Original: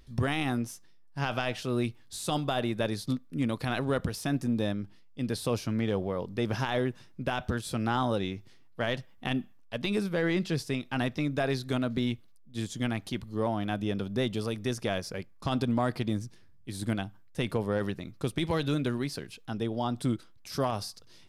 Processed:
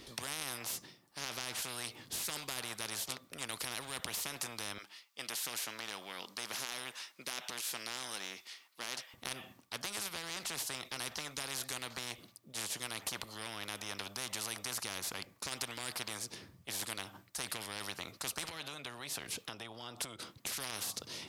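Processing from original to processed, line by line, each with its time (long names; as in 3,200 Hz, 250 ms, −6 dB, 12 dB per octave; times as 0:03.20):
0:04.78–0:09.14: high-pass filter 1,300 Hz
0:18.49–0:20.57: downward compressor, threshold −41 dBFS
whole clip: high-pass filter 120 Hz 12 dB per octave; parametric band 1,600 Hz −5 dB 0.37 octaves; every bin compressed towards the loudest bin 10 to 1; level +1.5 dB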